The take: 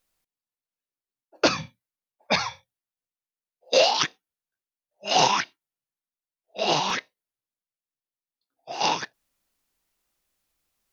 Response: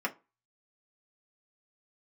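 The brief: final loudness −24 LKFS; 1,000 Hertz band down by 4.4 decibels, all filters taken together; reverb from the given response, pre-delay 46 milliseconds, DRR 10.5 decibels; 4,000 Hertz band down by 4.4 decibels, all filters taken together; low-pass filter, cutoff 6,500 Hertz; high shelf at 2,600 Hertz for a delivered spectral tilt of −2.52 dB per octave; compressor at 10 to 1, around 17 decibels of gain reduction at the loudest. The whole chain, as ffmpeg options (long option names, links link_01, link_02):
-filter_complex "[0:a]lowpass=6500,equalizer=frequency=1000:width_type=o:gain=-6,highshelf=frequency=2600:gain=4,equalizer=frequency=4000:width_type=o:gain=-8.5,acompressor=threshold=-34dB:ratio=10,asplit=2[link_01][link_02];[1:a]atrim=start_sample=2205,adelay=46[link_03];[link_02][link_03]afir=irnorm=-1:irlink=0,volume=-17.5dB[link_04];[link_01][link_04]amix=inputs=2:normalize=0,volume=15.5dB"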